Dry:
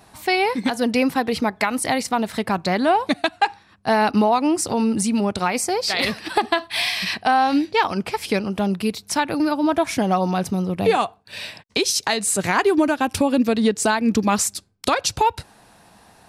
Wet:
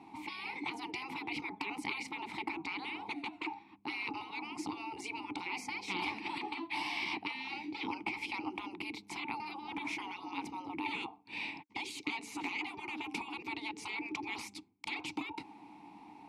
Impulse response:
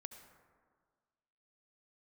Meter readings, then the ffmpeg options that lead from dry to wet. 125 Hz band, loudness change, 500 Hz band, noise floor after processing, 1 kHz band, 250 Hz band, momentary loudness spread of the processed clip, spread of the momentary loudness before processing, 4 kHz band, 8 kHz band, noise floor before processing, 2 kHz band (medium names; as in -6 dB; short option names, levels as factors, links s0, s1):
-27.0 dB, -19.0 dB, -29.0 dB, -59 dBFS, -20.0 dB, -22.0 dB, 5 LU, 5 LU, -16.5 dB, -27.0 dB, -53 dBFS, -13.5 dB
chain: -filter_complex "[0:a]afftfilt=real='re*lt(hypot(re,im),0.126)':imag='im*lt(hypot(re,im),0.126)':win_size=1024:overlap=0.75,asplit=3[s0][s1][s2];[s0]bandpass=f=300:t=q:w=8,volume=1[s3];[s1]bandpass=f=870:t=q:w=8,volume=0.501[s4];[s2]bandpass=f=2240:t=q:w=8,volume=0.355[s5];[s3][s4][s5]amix=inputs=3:normalize=0,volume=3.16"